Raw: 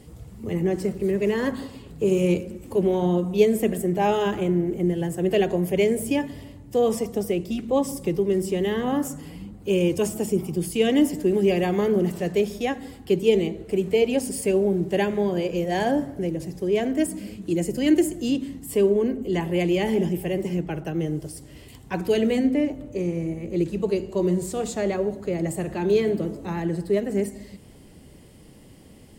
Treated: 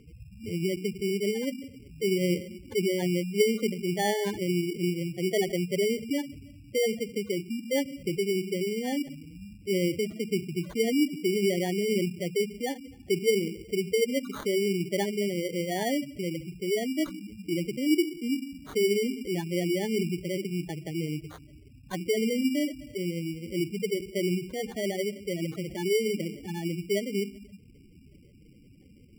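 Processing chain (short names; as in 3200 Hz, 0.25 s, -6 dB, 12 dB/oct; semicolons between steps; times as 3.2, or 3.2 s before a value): spectral gate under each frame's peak -10 dB strong; sample-and-hold 17×; gain -5 dB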